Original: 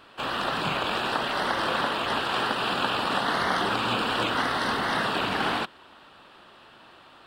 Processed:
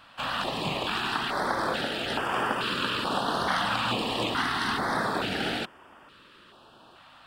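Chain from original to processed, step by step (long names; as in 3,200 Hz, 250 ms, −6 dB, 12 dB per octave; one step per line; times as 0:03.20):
notch on a step sequencer 2.3 Hz 390–4,000 Hz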